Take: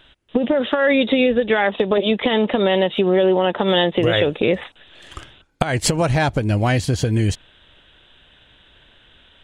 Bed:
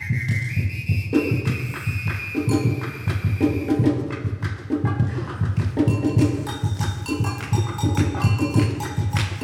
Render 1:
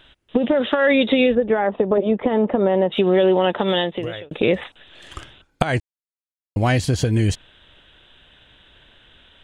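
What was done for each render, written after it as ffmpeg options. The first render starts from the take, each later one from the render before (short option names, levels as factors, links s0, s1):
-filter_complex "[0:a]asettb=1/sr,asplit=3[s0][s1][s2];[s0]atrim=end=1.354[s3];[s1]atrim=start=1.35:end=2.92,asetpts=PTS-STARTPTS,afade=t=in:d=0.004:c=qsin,afade=t=out:st=1.566:d=0.004:c=qsin,lowpass=1100[s4];[s2]atrim=start=2.916[s5];[s3][s4]acrossfade=d=0.004:c1=hsin:c2=qsin[s6];[s6][s5]acrossfade=d=0.004:c1=qsin:c2=hsin,asplit=4[s7][s8][s9][s10];[s7]atrim=end=4.31,asetpts=PTS-STARTPTS,afade=t=out:st=3.51:d=0.8[s11];[s8]atrim=start=4.31:end=5.8,asetpts=PTS-STARTPTS,afade=t=in:d=0.004:c=hsin,afade=t=out:st=1.486:d=0.004:c=hsin[s12];[s9]atrim=start=5.8:end=6.56,asetpts=PTS-STARTPTS,volume=0[s13];[s10]atrim=start=6.56,asetpts=PTS-STARTPTS,afade=t=in:d=0.004:c=hsin[s14];[s11][s12][s13][s14]concat=n=4:v=0:a=1"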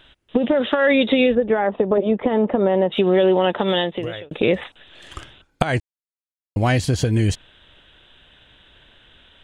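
-af anull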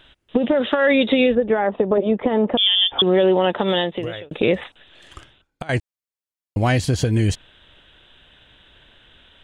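-filter_complex "[0:a]asettb=1/sr,asplit=3[s0][s1][s2];[s0]atrim=end=2.574[s3];[s1]atrim=start=2.57:end=3.02,asetpts=PTS-STARTPTS,afade=t=in:d=0.004:c=qsin,afade=t=out:st=0.446:d=0.004:c=qsin,lowpass=f=3100:t=q:w=0.5098,lowpass=f=3100:t=q:w=0.6013,lowpass=f=3100:t=q:w=0.9,lowpass=f=3100:t=q:w=2.563,afreqshift=-3700[s4];[s2]atrim=start=3.016[s5];[s3][s4]acrossfade=d=0.004:c1=hsin:c2=qsin[s6];[s6][s5]acrossfade=d=0.004:c1=qsin:c2=hsin,asplit=2[s7][s8];[s7]atrim=end=5.69,asetpts=PTS-STARTPTS,afade=t=out:st=4.5:d=1.19:silence=0.177828[s9];[s8]atrim=start=5.69,asetpts=PTS-STARTPTS,afade=t=in:d=0.004:c=hsin:silence=0.177828[s10];[s9][s10]concat=n=2:v=0:a=1"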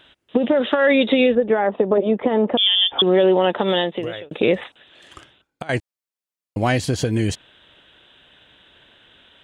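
-af "highpass=f=280:p=1,lowshelf=f=470:g=4.5"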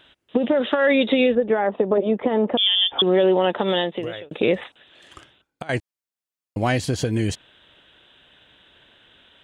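-af "volume=0.794"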